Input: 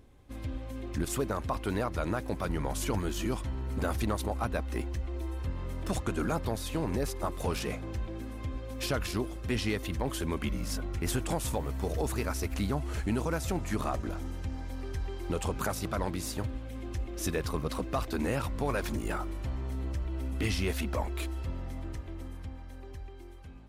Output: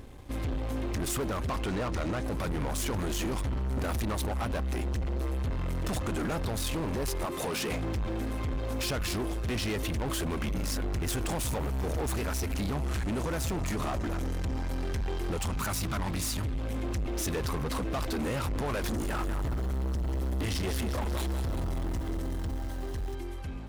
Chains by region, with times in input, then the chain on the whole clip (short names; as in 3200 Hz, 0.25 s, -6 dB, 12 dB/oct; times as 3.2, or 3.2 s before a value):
1.6–2.24 LPF 8700 Hz 24 dB/oct + doubler 16 ms -13.5 dB
7.25–7.71 HPF 170 Hz + compressor 2.5:1, threshold -35 dBFS
15.37–16.59 bell 470 Hz -13 dB 0.95 oct + notch 1600 Hz, Q 21
18.86–23.15 bell 2400 Hz -12 dB 0.22 oct + lo-fi delay 0.186 s, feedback 55%, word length 9-bit, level -9 dB
whole clip: limiter -27 dBFS; sample leveller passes 3